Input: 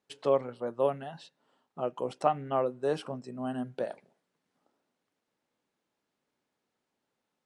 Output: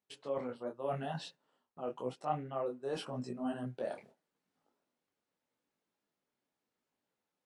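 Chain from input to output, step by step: gate -59 dBFS, range -10 dB; reverse; compressor 4:1, threshold -41 dBFS, peak gain reduction 18 dB; reverse; detuned doubles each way 30 cents; gain +8 dB

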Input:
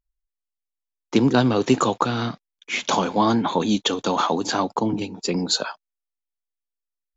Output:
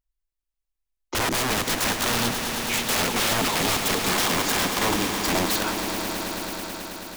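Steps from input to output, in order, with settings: wrapped overs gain 19 dB; on a send: swelling echo 0.108 s, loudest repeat 5, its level -11 dB

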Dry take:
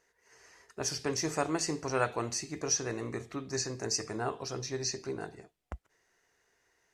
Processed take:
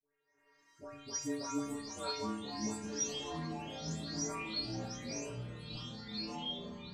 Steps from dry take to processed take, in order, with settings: spectral delay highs late, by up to 0.378 s; frequency shift -38 Hz; metallic resonator 140 Hz, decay 0.83 s, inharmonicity 0.008; echoes that change speed 0.554 s, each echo -5 st, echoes 3; gain +8 dB

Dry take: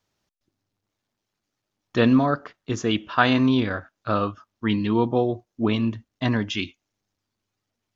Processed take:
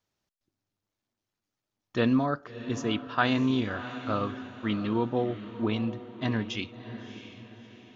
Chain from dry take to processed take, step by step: diffused feedback echo 0.653 s, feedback 45%, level -12 dB; gain -6.5 dB

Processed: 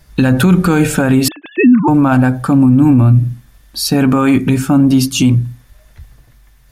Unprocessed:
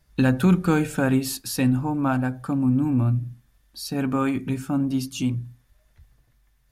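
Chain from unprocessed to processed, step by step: 1.28–1.88 sine-wave speech; maximiser +17.5 dB; gain -1 dB

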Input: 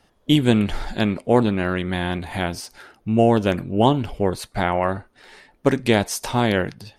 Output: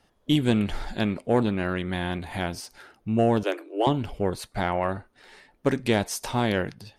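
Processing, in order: 3.43–3.87 Chebyshev high-pass 290 Hz, order 10; soft clip -4.5 dBFS, distortion -24 dB; gain -4.5 dB

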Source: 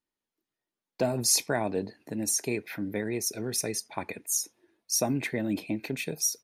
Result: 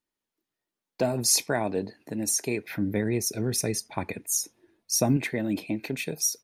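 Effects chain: 2.68–5.17 low shelf 190 Hz +11 dB; gain +1.5 dB

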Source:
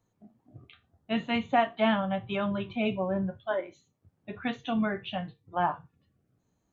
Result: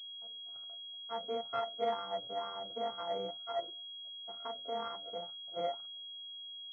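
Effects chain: sample sorter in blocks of 64 samples; notches 50/100/150/200/250/300 Hz; wah 2.1 Hz 460–1200 Hz, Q 3.2; pulse-width modulation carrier 3300 Hz; gain -1.5 dB

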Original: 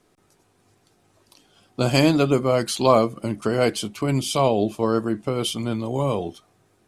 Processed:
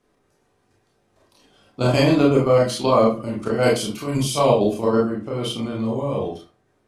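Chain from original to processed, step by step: high shelf 5500 Hz -6 dB, from 3.63 s +3.5 dB, from 4.89 s -8.5 dB; level quantiser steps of 10 dB; reverb RT60 0.35 s, pre-delay 25 ms, DRR -4 dB

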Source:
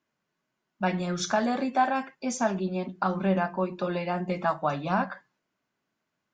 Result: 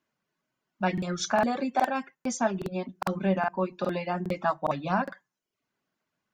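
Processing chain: reverb removal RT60 0.56 s; crackling interface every 0.41 s, samples 2048, repeat, from 0.52

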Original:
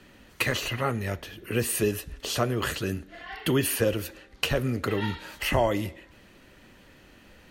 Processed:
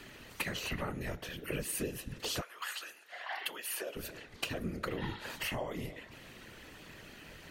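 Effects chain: flange 0.8 Hz, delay 6.1 ms, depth 2.4 ms, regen +73%; compressor 12:1, threshold -38 dBFS, peak gain reduction 17 dB; 2.4–3.95 HPF 930 Hz -> 450 Hz 24 dB/oct; whisperiser; mismatched tape noise reduction encoder only; gain +4.5 dB

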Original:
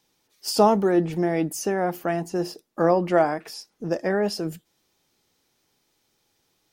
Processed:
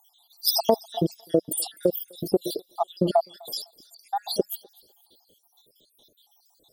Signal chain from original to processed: random spectral dropouts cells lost 74%; EQ curve 180 Hz 0 dB, 600 Hz +10 dB, 1100 Hz -5 dB, 1600 Hz -25 dB, 2400 Hz -25 dB, 3400 Hz +15 dB, 6200 Hz -3 dB, 15000 Hz +13 dB; compressor 6:1, threshold -25 dBFS, peak gain reduction 13 dB; thinning echo 0.252 s, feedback 39%, high-pass 900 Hz, level -22 dB; gain +7.5 dB

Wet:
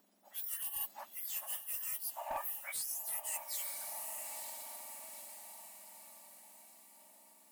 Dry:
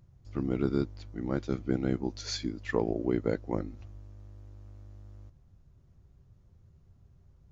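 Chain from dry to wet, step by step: spectrum mirrored in octaves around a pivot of 2000 Hz; diffused feedback echo 0.945 s, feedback 50%, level -13.5 dB; one-sided clip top -30.5 dBFS; reverse; compressor 6:1, threshold -45 dBFS, peak gain reduction 14 dB; reverse; gain +7.5 dB

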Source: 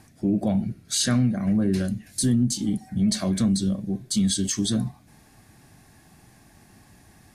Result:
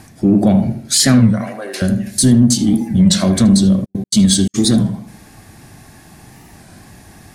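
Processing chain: 1.33–1.82 HPF 550 Hz 24 dB/oct; tape echo 79 ms, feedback 46%, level -6.5 dB, low-pass 1400 Hz; 3.84–4.54 step gate "xxx..x.x" 171 bpm -60 dB; in parallel at -8 dB: soft clip -22 dBFS, distortion -11 dB; on the sum: record warp 33 1/3 rpm, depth 160 cents; gain +9 dB

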